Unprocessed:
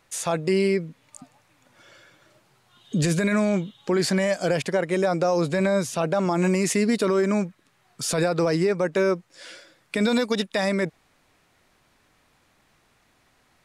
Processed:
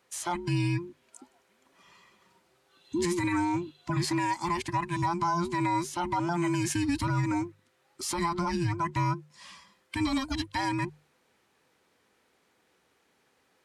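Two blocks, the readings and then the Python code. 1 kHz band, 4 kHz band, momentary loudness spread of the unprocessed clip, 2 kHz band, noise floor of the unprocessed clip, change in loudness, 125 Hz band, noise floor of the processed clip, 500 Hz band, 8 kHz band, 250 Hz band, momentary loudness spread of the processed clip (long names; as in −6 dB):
+1.5 dB, −6.0 dB, 9 LU, −6.5 dB, −64 dBFS, −6.5 dB, −3.0 dB, −70 dBFS, −15.0 dB, −6.0 dB, −6.0 dB, 8 LU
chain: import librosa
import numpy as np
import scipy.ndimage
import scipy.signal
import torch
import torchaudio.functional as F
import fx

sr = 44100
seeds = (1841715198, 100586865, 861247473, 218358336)

y = fx.band_invert(x, sr, width_hz=500)
y = scipy.signal.sosfilt(scipy.signal.butter(2, 69.0, 'highpass', fs=sr, output='sos'), y)
y = fx.hum_notches(y, sr, base_hz=50, count=3)
y = y * librosa.db_to_amplitude(-6.0)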